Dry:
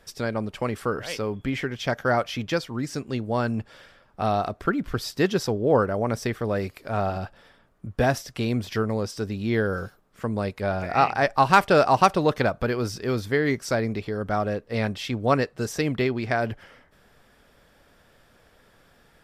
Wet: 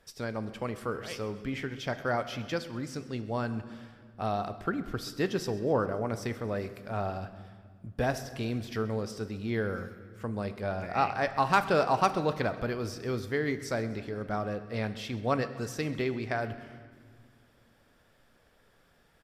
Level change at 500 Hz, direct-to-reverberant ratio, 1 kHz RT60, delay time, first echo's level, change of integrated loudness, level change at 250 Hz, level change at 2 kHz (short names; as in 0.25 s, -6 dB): -7.0 dB, 10.5 dB, 1.5 s, 0.132 s, -20.0 dB, -7.0 dB, -7.0 dB, -7.0 dB